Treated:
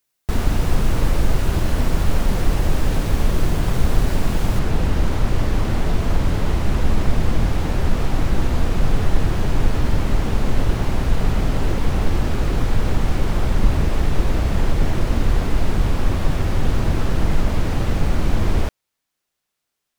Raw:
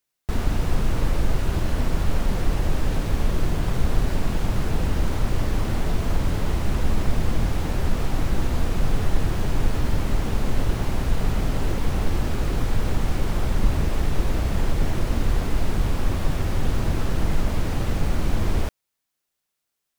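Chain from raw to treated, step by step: treble shelf 7.4 kHz +3 dB, from 4.59 s -5.5 dB; trim +4 dB

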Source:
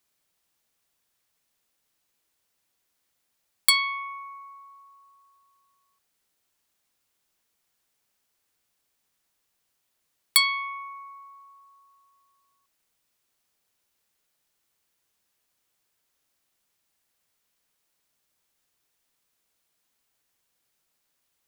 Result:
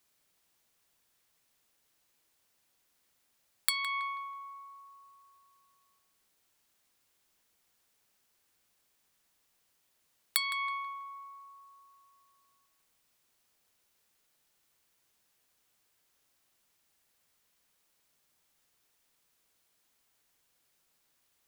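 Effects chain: compression 12:1, threshold -28 dBFS, peak gain reduction 15.5 dB; on a send: filtered feedback delay 162 ms, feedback 37%, low-pass 3.6 kHz, level -9 dB; on the sum: trim +1.5 dB

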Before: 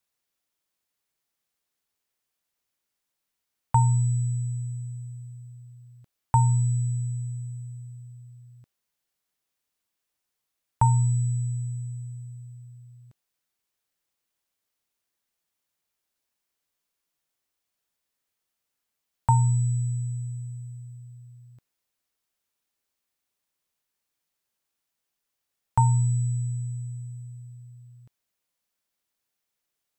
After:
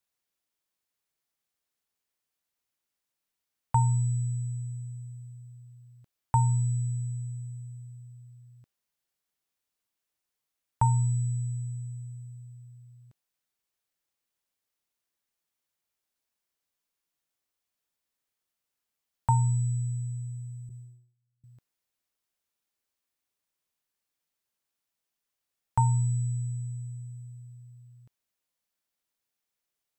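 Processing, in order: 20.69–21.44 s: gate -41 dBFS, range -30 dB; trim -3.5 dB

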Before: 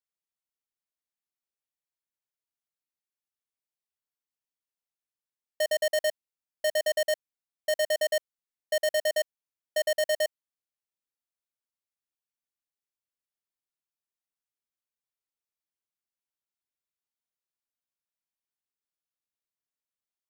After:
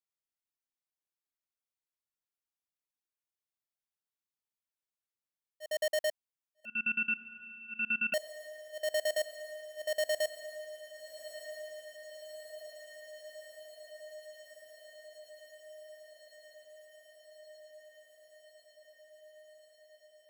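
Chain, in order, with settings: slow attack 194 ms; echo that smears into a reverb 1281 ms, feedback 76%, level -13 dB; 6.65–8.14 s: frequency inversion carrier 3.3 kHz; trim -5 dB

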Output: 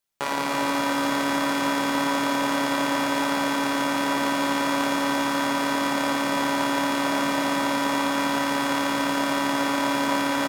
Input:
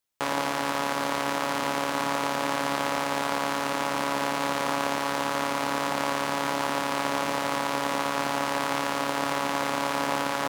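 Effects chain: feedback delay 289 ms, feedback 56%, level -5 dB; simulated room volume 1100 m³, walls mixed, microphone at 1.2 m

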